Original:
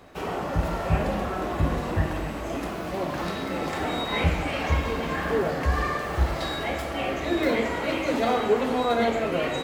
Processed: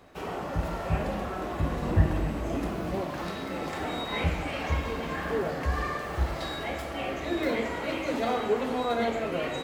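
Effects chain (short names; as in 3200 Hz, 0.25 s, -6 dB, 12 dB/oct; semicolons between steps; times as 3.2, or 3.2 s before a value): 1.82–3.01 low shelf 390 Hz +8.5 dB; gain -4.5 dB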